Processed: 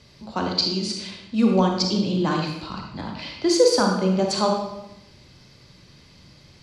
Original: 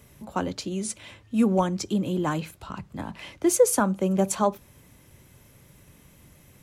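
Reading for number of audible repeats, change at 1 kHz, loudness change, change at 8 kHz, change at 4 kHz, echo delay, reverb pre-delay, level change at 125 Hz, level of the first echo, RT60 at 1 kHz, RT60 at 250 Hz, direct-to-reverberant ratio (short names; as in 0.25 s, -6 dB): none, +3.0 dB, +3.0 dB, -2.0 dB, +14.5 dB, none, 31 ms, +3.5 dB, none, 0.85 s, 1.0 s, 1.0 dB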